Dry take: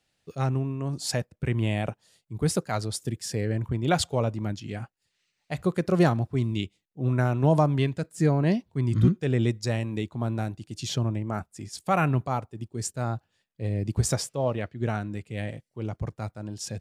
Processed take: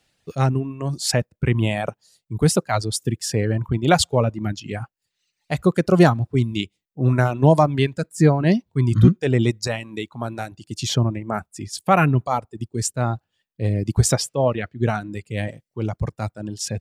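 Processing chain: reverb removal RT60 1.1 s; 9.67–10.52 low shelf 340 Hz -10.5 dB; gain +8 dB

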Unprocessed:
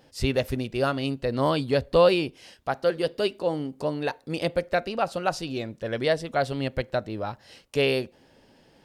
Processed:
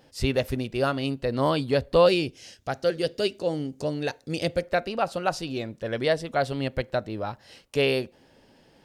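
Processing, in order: 2.06–4.61 fifteen-band EQ 100 Hz +7 dB, 1000 Hz -8 dB, 6300 Hz +9 dB

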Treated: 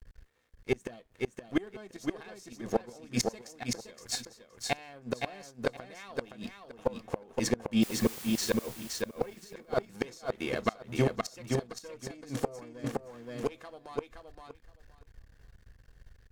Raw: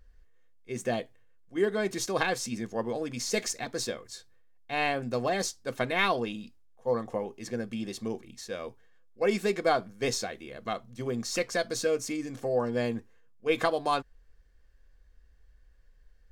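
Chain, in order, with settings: in parallel at +2 dB: limiter -21 dBFS, peak gain reduction 10.5 dB; 9.33–9.87 on the sum: negative-ratio compressor -26 dBFS, ratio -0.5; crossover distortion -49.5 dBFS; added harmonics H 6 -22 dB, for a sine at -7.5 dBFS; flipped gate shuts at -18 dBFS, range -29 dB; 7.82–8.5 requantised 8-bit, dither triangular; on a send: feedback echo 0.519 s, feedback 17%, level -4 dB; 12.84–13.52 on the sum: three-band squash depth 100%; gain +4 dB

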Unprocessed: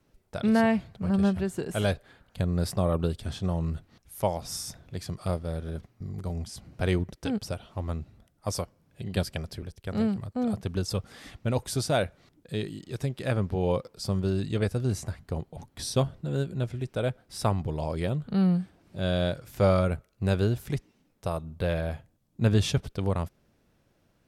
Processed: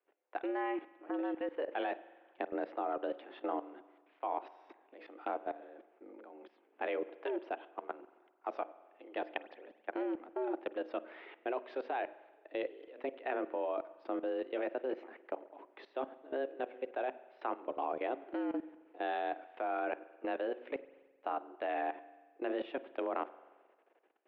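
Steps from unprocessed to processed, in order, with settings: notches 60/120/180/240/300/360/420/480/540 Hz; mistuned SSB +130 Hz 220–2700 Hz; level quantiser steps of 18 dB; spring tank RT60 1.4 s, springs 44 ms, chirp 25 ms, DRR 16.5 dB; gain +1 dB

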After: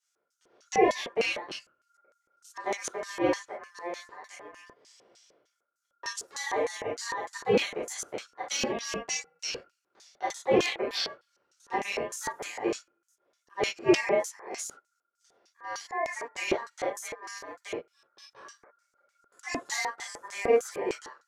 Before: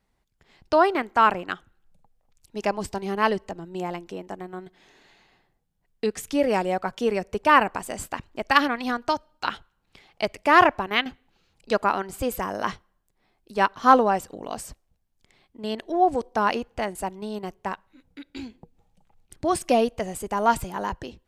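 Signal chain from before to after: high shelf 5100 Hz +8.5 dB; non-linear reverb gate 80 ms flat, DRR -8 dB; ring modulator 1400 Hz; de-esser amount 45%; LFO band-pass square 3.3 Hz 430–6400 Hz

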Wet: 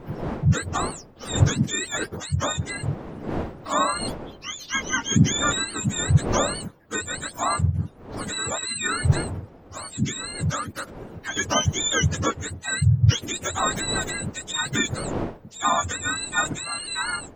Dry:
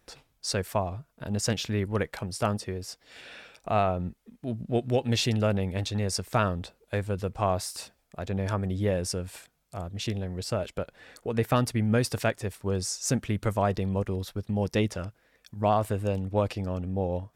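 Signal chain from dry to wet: spectrum mirrored in octaves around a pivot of 870 Hz; wind noise 490 Hz -41 dBFS; gain +5 dB

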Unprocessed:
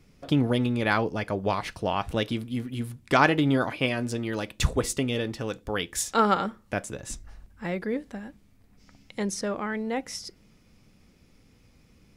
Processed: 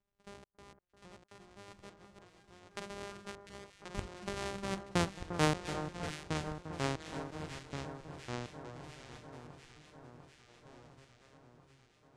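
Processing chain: sample sorter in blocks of 256 samples; Doppler pass-by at 5.01, 49 m/s, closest 11 m; LPF 9300 Hz 24 dB/oct; notches 50/100/150/200/250/300 Hz; step gate "xxx.x..x.x" 103 bpm -60 dB; echoes that change speed 0.744 s, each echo -2 st, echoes 2, each echo -6 dB; echo with dull and thin repeats by turns 0.349 s, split 1600 Hz, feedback 82%, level -9.5 dB

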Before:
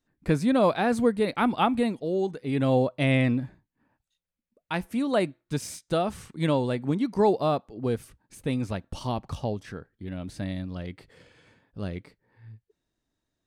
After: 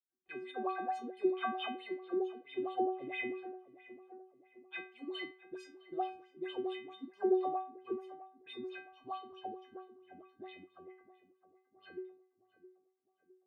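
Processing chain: low-pass opened by the level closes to 380 Hz, open at -24 dBFS; in parallel at -2 dB: limiter -19 dBFS, peak gain reduction 9 dB; on the sum: vibrato 12 Hz 31 cents; wah 4.5 Hz 220–3400 Hz, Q 6.6; metallic resonator 370 Hz, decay 0.43 s, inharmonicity 0.008; on a send: tape echo 0.662 s, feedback 56%, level -14 dB, low-pass 1300 Hz; on the sum: gain +12.5 dB

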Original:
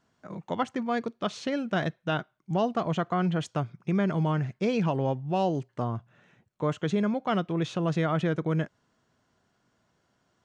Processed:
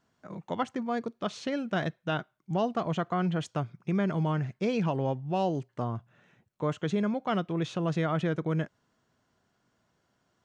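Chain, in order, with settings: 0.72–1.26 dynamic EQ 2500 Hz, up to -5 dB, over -45 dBFS, Q 0.86; gain -2 dB

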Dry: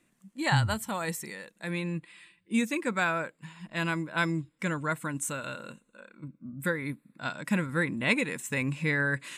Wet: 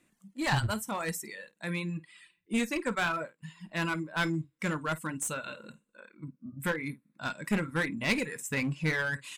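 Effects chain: early reflections 19 ms -12 dB, 51 ms -10.5 dB; reverb removal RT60 1.1 s; one-sided clip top -28.5 dBFS

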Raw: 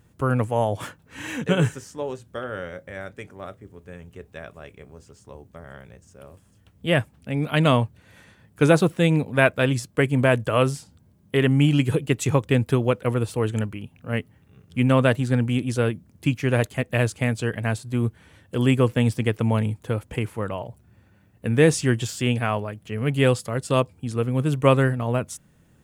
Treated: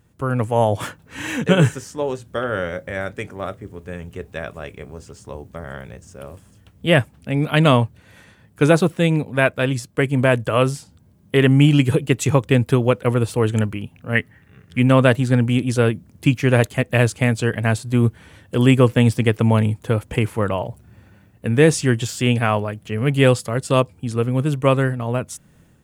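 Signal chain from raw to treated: 14.15–14.79 bell 1800 Hz +13 dB 0.71 oct; AGC gain up to 10 dB; gain -1 dB

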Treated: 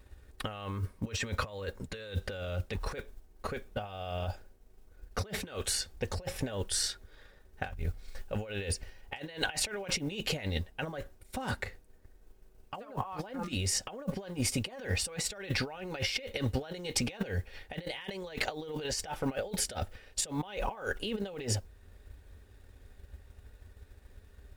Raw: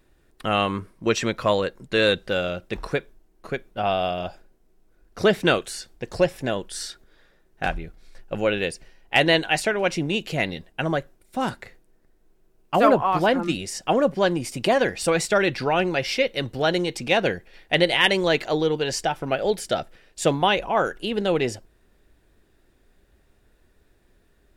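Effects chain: resonant low shelf 110 Hz +6.5 dB, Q 3; modulation noise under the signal 33 dB; negative-ratio compressor -32 dBFS, ratio -1; notch comb 340 Hz; transient shaper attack +4 dB, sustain -2 dB; gain -4.5 dB

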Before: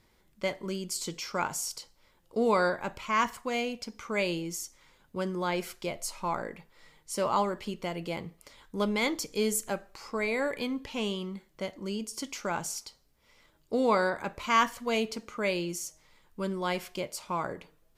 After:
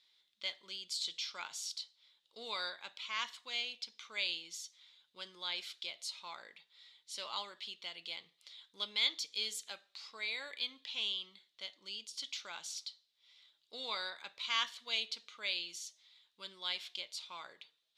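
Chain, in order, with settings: band-pass 3700 Hz, Q 5.8; gain +9.5 dB

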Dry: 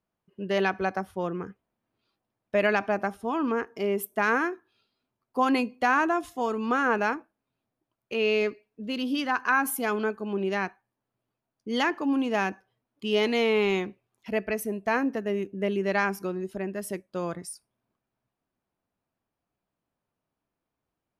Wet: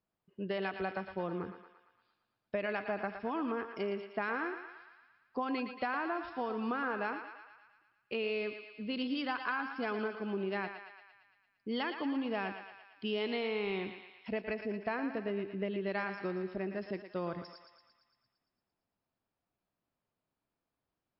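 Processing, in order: compressor, threshold -28 dBFS, peak gain reduction 9.5 dB; on a send: thinning echo 0.114 s, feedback 65%, high-pass 580 Hz, level -7.5 dB; on the sum: gain -3.5 dB; MP3 64 kbps 12000 Hz

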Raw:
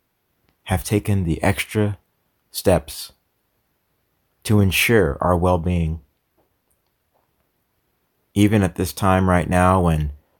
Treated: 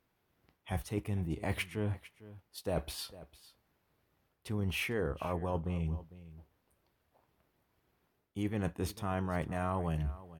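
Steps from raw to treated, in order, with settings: high shelf 5700 Hz -7.5 dB; reverse; compressor 6:1, threshold -26 dBFS, peak gain reduction 15 dB; reverse; echo 0.452 s -17.5 dB; gain -6 dB

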